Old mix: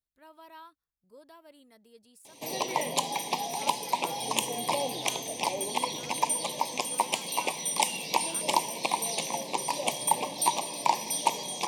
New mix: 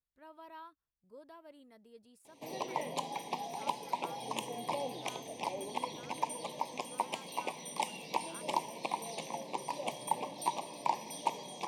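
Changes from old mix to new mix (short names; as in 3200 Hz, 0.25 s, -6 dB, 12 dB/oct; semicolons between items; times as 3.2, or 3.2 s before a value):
background -6.0 dB; master: add high shelf 3200 Hz -11 dB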